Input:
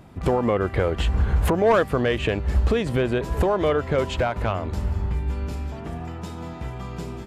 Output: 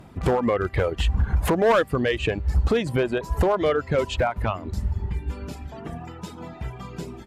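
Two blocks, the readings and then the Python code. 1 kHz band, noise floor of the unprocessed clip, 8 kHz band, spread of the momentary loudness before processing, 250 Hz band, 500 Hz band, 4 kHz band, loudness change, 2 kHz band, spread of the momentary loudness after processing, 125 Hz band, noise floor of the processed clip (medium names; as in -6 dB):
-0.5 dB, -35 dBFS, +1.0 dB, 14 LU, -1.0 dB, -0.5 dB, +0.5 dB, 0.0 dB, +0.5 dB, 15 LU, -1.5 dB, -42 dBFS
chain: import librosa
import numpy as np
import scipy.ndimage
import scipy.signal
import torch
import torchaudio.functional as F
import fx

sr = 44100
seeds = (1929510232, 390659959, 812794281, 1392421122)

y = fx.dereverb_blind(x, sr, rt60_s=1.9)
y = fx.clip_asym(y, sr, top_db=-16.5, bottom_db=-14.5)
y = y * 10.0 ** (1.5 / 20.0)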